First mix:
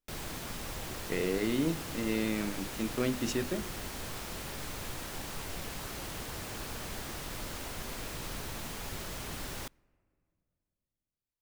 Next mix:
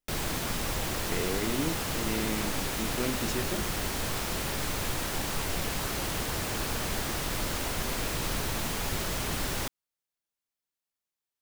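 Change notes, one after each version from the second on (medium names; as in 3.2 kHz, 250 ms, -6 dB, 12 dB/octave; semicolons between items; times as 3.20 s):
background +9.0 dB; reverb: off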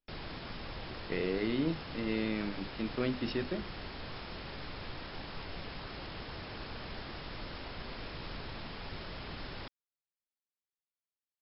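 background -10.5 dB; master: add brick-wall FIR low-pass 5.4 kHz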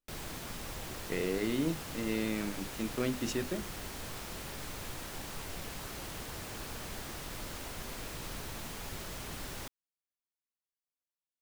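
master: remove brick-wall FIR low-pass 5.4 kHz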